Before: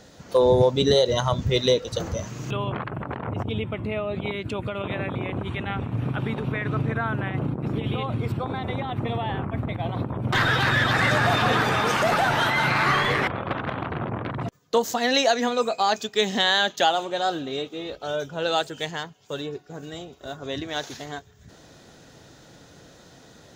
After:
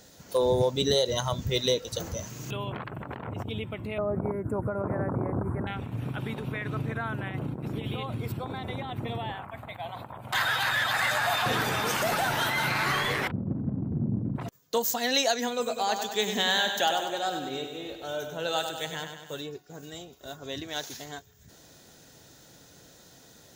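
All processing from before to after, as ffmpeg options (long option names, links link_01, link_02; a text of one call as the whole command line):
ffmpeg -i in.wav -filter_complex "[0:a]asettb=1/sr,asplit=3[link_01][link_02][link_03];[link_01]atrim=end=3.984[link_04];[link_02]atrim=start=3.98:end=5.67,asetpts=PTS-STARTPTS,afade=type=in:duration=0.004:curve=qsin,afade=type=out:start_time=1.686:duration=0.004:curve=qsin,aemphasis=mode=reproduction:type=50kf,acontrast=64,asuperstop=centerf=3800:order=8:qfactor=0.53[link_05];[link_03]atrim=start=5.666[link_06];[link_04][link_05]acrossfade=duration=0.004:curve1=hsin:curve2=qsin[link_07];[link_07][link_06]acrossfade=duration=0.004:curve1=qsin:curve2=hsin,asettb=1/sr,asplit=3[link_08][link_09][link_10];[link_08]atrim=end=9.324[link_11];[link_09]atrim=start=9.32:end=11.46,asetpts=PTS-STARTPTS,afade=type=in:duration=0.004:curve=qsin,afade=type=out:start_time=2.136:duration=0.004:curve=qsin,lowshelf=frequency=530:width_type=q:width=1.5:gain=-10.5,bandreject=frequency=5600:width=11[link_12];[link_10]atrim=start=11.456[link_13];[link_11][link_12]acrossfade=duration=0.004:curve1=hsin:curve2=qsin[link_14];[link_14][link_13]acrossfade=duration=0.004:curve1=qsin:curve2=hsin,asettb=1/sr,asplit=3[link_15][link_16][link_17];[link_15]atrim=end=13.314[link_18];[link_16]atrim=start=13.31:end=14.36,asetpts=PTS-STARTPTS,afade=type=in:duration=0.004:curve=qsin,afade=type=out:start_time=1.046:duration=0.004:curve=qsin,lowpass=frequency=220:width_type=q:width=2.1,acontrast=50[link_19];[link_17]atrim=start=14.356[link_20];[link_18][link_19]acrossfade=duration=0.004:curve1=hsin:curve2=qsin[link_21];[link_21][link_20]acrossfade=duration=0.004:curve1=qsin:curve2=hsin,asettb=1/sr,asplit=3[link_22][link_23][link_24];[link_22]atrim=end=15.504[link_25];[link_23]atrim=start=15.5:end=19.38,asetpts=PTS-STARTPTS,afade=type=in:duration=0.004:curve=qsin,afade=type=out:start_time=3.876:duration=0.004:curve=qsin,equalizer=frequency=4800:width=2.2:gain=-6,aecho=1:1:98|196|294|392|490|588|686|784:0.447|0.264|0.155|0.0917|0.0541|0.0319|0.0188|0.0111,atrim=end_sample=171108[link_26];[link_24]atrim=start=19.376[link_27];[link_25][link_26]acrossfade=duration=0.004:curve1=hsin:curve2=qsin[link_28];[link_28][link_27]acrossfade=duration=0.004:curve1=qsin:curve2=hsin,aemphasis=mode=production:type=50fm,bandreject=frequency=1200:width=19,volume=-6dB" out.wav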